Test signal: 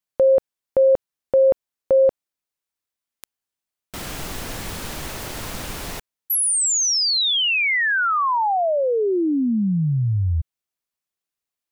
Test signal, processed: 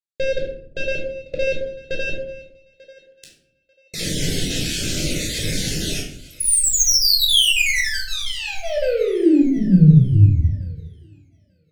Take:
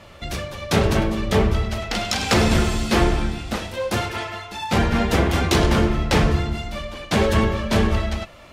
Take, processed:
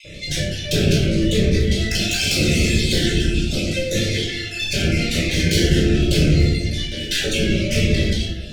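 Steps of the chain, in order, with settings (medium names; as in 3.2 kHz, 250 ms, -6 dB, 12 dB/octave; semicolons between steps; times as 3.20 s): random holes in the spectrogram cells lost 35%; gate with hold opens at -54 dBFS; low-pass 8.2 kHz 12 dB/octave; bass shelf 230 Hz -10.5 dB; in parallel at -2.5 dB: peak limiter -21.5 dBFS; on the sum: valve stage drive 23 dB, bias 0.25; Butterworth band-stop 1 kHz, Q 0.61; thinning echo 891 ms, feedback 25%, high-pass 570 Hz, level -19.5 dB; simulated room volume 950 m³, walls furnished, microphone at 5.2 m; Shepard-style phaser falling 0.77 Hz; trim +5 dB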